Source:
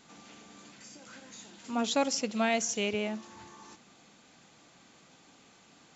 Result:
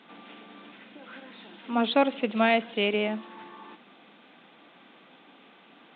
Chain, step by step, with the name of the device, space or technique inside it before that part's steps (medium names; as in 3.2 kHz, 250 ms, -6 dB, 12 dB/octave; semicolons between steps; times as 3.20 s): Bluetooth headset (high-pass 200 Hz 24 dB/octave; resampled via 8 kHz; trim +6 dB; SBC 64 kbps 16 kHz)